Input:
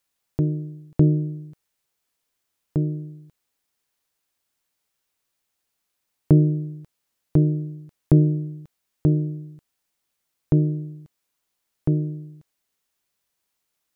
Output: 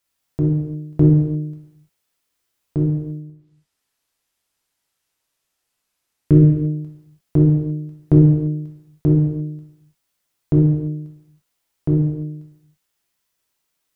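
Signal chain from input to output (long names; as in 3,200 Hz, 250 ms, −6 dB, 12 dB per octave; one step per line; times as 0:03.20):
0:03.16–0:06.38: treble cut that deepens with the level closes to 710 Hz, closed at −45 dBFS
reverb whose tail is shaped and stops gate 370 ms falling, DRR −2.5 dB
level −1 dB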